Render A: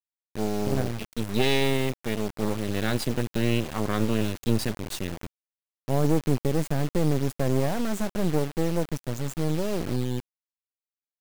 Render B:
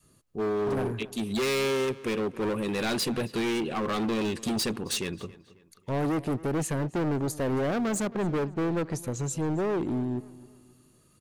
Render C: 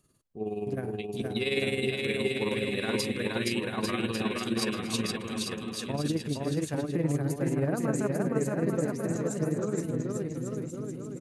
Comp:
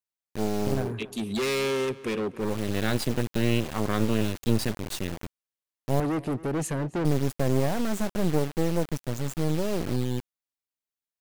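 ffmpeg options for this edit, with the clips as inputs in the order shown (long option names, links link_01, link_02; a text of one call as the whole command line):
ffmpeg -i take0.wav -i take1.wav -filter_complex "[1:a]asplit=2[link_01][link_02];[0:a]asplit=3[link_03][link_04][link_05];[link_03]atrim=end=0.94[link_06];[link_01]atrim=start=0.7:end=2.58[link_07];[link_04]atrim=start=2.34:end=6.002[link_08];[link_02]atrim=start=5.998:end=7.052[link_09];[link_05]atrim=start=7.048[link_10];[link_06][link_07]acrossfade=duration=0.24:curve1=tri:curve2=tri[link_11];[link_11][link_08]acrossfade=duration=0.24:curve1=tri:curve2=tri[link_12];[link_12][link_09]acrossfade=duration=0.004:curve1=hsin:curve2=hsin[link_13];[link_13][link_10]acrossfade=duration=0.004:curve1=hsin:curve2=hsin" out.wav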